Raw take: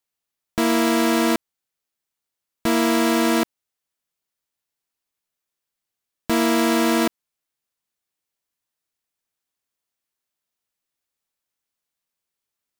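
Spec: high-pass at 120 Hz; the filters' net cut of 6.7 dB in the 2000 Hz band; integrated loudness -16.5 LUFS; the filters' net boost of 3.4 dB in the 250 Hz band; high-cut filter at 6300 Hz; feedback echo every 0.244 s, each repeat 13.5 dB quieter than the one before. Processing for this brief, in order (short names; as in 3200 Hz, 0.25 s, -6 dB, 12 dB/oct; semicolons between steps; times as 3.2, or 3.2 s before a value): HPF 120 Hz; LPF 6300 Hz; bell 250 Hz +4.5 dB; bell 2000 Hz -8.5 dB; feedback echo 0.244 s, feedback 21%, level -13.5 dB; gain +2 dB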